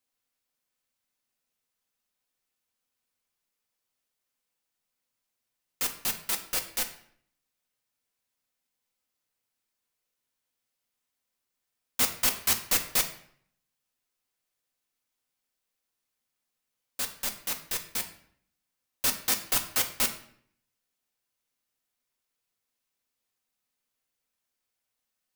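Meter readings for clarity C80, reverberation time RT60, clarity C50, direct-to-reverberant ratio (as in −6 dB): 14.0 dB, 0.60 s, 11.0 dB, 4.0 dB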